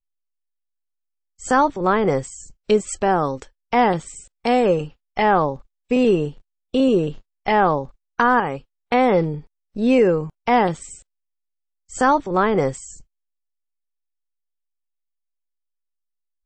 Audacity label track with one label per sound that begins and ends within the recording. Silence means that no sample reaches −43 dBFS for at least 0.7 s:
1.400000	11.020000	sound
11.900000	13.020000	sound